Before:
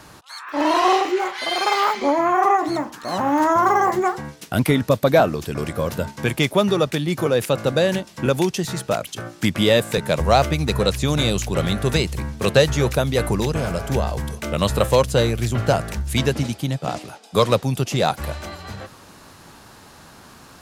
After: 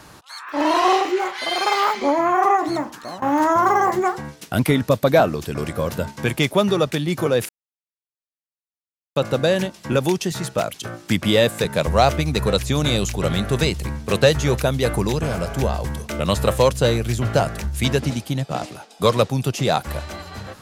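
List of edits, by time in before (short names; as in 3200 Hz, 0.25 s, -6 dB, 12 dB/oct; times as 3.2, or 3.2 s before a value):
2.97–3.22 fade out, to -21 dB
7.49 insert silence 1.67 s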